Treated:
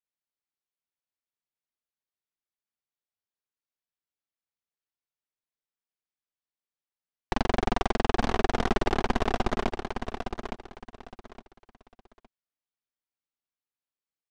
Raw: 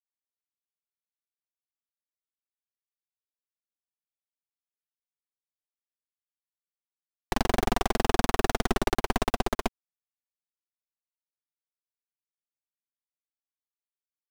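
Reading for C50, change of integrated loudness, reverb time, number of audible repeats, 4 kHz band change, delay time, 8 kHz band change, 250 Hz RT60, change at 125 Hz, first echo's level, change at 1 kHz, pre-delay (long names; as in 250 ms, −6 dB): no reverb audible, −1.0 dB, no reverb audible, 3, −2.0 dB, 863 ms, −7.5 dB, no reverb audible, +1.0 dB, −7.0 dB, +0.5 dB, no reverb audible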